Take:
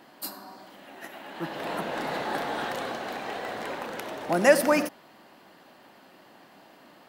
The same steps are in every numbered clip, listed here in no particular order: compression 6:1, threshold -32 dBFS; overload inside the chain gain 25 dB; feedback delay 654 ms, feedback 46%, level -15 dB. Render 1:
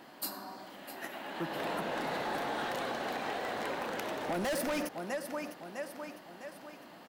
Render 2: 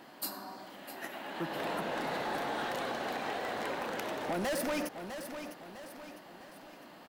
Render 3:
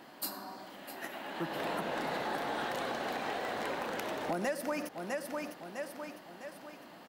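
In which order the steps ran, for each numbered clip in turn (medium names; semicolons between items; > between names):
feedback delay > overload inside the chain > compression; overload inside the chain > feedback delay > compression; feedback delay > compression > overload inside the chain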